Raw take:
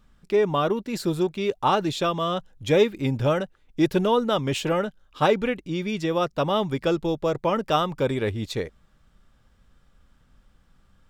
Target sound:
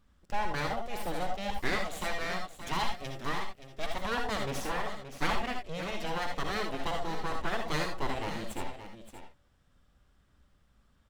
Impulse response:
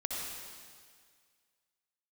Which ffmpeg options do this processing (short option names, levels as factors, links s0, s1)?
-filter_complex "[0:a]asettb=1/sr,asplit=3[s0][s1][s2];[s0]atrim=end=1.634[s3];[s1]atrim=start=1.63:end=4.18,asetpts=PTS-STARTPTS,afade=t=in:d=0.004:c=qsin,afade=t=out:st=2.546:d=0.004:c=qsin,acrossover=split=360|3000[s4][s5][s6];[s4]acompressor=threshold=0.02:ratio=6[s7];[s7][s5][s6]amix=inputs=3:normalize=0[s8];[s2]atrim=start=4.176[s9];[s3][s8]acrossfade=d=0.004:c1=hsin:c2=qsin[s10];[s10][s9]acrossfade=d=0.004:c1=qsin:c2=hsin,aeval=exprs='abs(val(0))':c=same,aecho=1:1:574:0.282[s11];[1:a]atrim=start_sample=2205,atrim=end_sample=3969[s12];[s11][s12]afir=irnorm=-1:irlink=0,volume=0.531"